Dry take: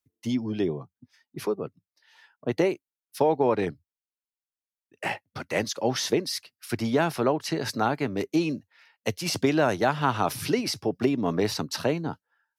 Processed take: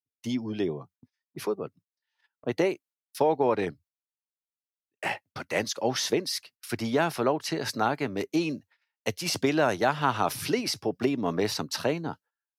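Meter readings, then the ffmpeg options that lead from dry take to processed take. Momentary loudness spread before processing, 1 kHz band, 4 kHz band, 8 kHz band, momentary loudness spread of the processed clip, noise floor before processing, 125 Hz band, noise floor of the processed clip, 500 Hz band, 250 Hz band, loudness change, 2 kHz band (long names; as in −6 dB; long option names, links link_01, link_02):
11 LU, −0.5 dB, 0.0 dB, 0.0 dB, 11 LU, below −85 dBFS, −4.0 dB, below −85 dBFS, −1.5 dB, −2.5 dB, −1.5 dB, 0.0 dB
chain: -af "agate=range=-24dB:threshold=-52dB:ratio=16:detection=peak,lowshelf=frequency=330:gain=-4.5"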